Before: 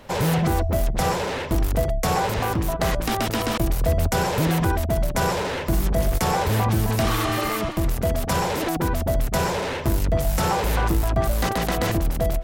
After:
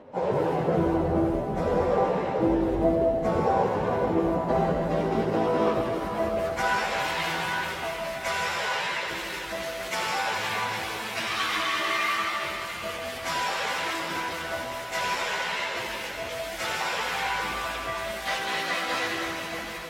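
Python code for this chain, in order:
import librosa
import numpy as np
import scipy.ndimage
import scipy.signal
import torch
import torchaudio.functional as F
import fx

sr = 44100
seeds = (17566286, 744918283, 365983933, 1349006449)

y = fx.filter_sweep_bandpass(x, sr, from_hz=440.0, to_hz=2400.0, start_s=3.3, end_s=4.37, q=0.96)
y = fx.rev_schroeder(y, sr, rt60_s=2.6, comb_ms=33, drr_db=-1.0)
y = fx.stretch_vocoder_free(y, sr, factor=1.6)
y = y * librosa.db_to_amplitude(3.0)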